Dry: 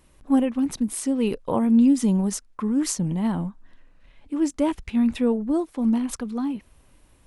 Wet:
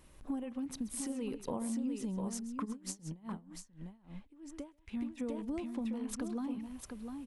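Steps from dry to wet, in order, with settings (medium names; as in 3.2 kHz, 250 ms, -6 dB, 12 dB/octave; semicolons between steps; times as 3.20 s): compression 10:1, threshold -33 dBFS, peak gain reduction 19 dB; multi-tap echo 132/701 ms -15/-6 dB; 2.64–5.17 s: logarithmic tremolo 5.9 Hz -> 1.8 Hz, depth 23 dB; trim -2.5 dB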